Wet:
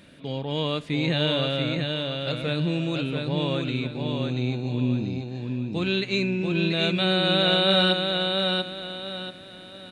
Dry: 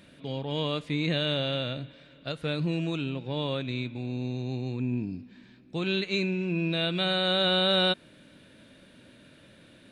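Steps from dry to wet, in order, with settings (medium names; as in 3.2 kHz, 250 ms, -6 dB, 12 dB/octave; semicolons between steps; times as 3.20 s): feedback delay 686 ms, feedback 33%, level -4 dB; trim +3 dB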